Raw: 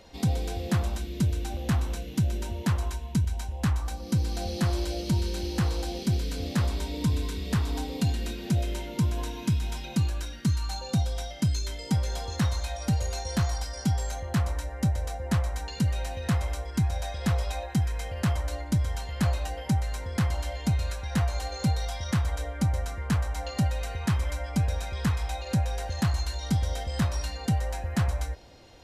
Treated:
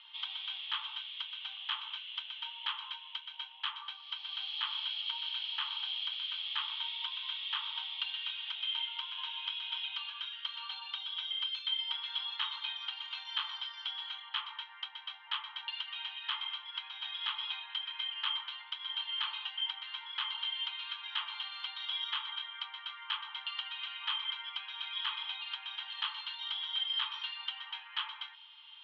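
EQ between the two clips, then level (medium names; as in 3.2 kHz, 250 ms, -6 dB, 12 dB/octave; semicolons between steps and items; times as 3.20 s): rippled Chebyshev high-pass 860 Hz, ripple 6 dB; resonant low-pass 3.2 kHz, resonance Q 13; distance through air 290 m; 0.0 dB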